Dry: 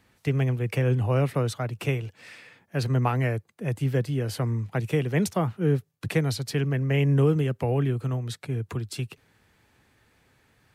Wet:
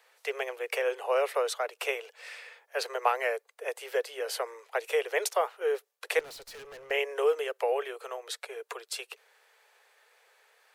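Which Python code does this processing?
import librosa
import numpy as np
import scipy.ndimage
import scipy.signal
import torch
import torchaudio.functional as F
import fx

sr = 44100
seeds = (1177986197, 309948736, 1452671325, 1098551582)

y = scipy.signal.sosfilt(scipy.signal.butter(12, 430.0, 'highpass', fs=sr, output='sos'), x)
y = fx.tube_stage(y, sr, drive_db=46.0, bias=0.4, at=(6.19, 6.91))
y = y * 10.0 ** (2.0 / 20.0)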